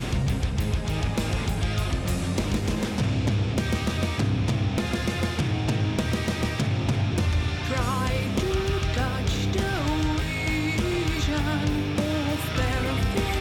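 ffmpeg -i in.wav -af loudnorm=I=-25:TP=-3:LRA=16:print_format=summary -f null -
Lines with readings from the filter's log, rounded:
Input Integrated:    -25.9 LUFS
Input True Peak:     -14.7 dBTP
Input LRA:             0.7 LU
Input Threshold:     -35.9 LUFS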